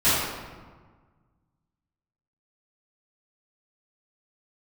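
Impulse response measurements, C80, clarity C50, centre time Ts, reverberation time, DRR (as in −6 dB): 0.5 dB, −2.5 dB, 100 ms, 1.5 s, −16.5 dB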